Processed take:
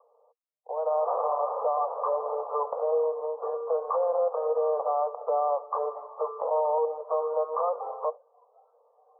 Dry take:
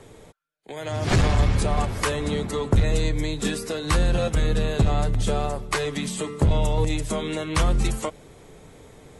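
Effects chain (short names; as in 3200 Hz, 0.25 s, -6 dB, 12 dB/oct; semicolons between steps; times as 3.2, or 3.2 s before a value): spectral noise reduction 17 dB; Chebyshev band-pass 470–1200 Hz, order 5; limiter -26 dBFS, peak gain reduction 10 dB; gain +7.5 dB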